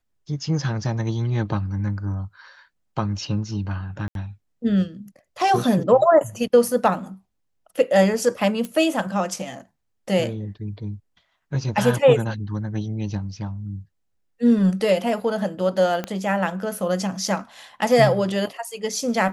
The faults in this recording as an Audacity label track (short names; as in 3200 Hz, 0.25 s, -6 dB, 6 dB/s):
4.080000	4.150000	gap 72 ms
8.650000	8.650000	pop
16.040000	16.040000	pop -13 dBFS